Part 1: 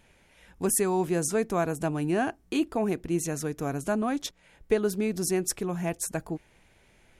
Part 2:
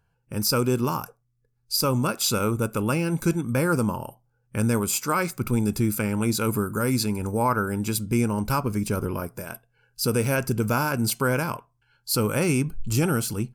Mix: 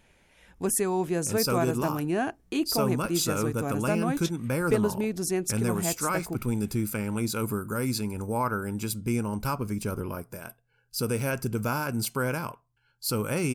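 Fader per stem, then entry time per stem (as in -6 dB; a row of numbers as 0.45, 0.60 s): -1.0, -5.0 dB; 0.00, 0.95 s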